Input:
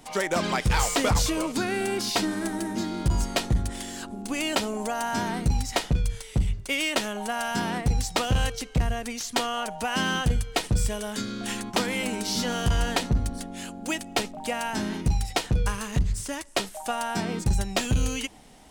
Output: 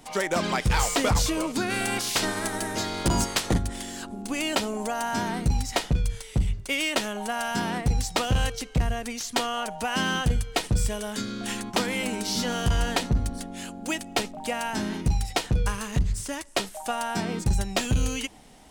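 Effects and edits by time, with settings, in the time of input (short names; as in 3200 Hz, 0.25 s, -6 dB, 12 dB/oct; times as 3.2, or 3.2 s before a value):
1.69–3.57 spectral limiter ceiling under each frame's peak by 17 dB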